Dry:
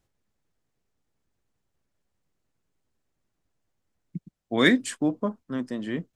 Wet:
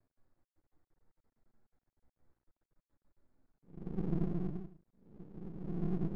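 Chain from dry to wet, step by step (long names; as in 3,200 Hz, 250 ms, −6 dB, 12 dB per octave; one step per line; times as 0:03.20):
adaptive Wiener filter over 15 samples
on a send: echo with a time of its own for lows and highs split 960 Hz, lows 160 ms, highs 780 ms, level −3 dB
on the sum: extreme stretch with random phases 11×, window 0.10 s, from 0:03.78
half-wave rectification
level +3 dB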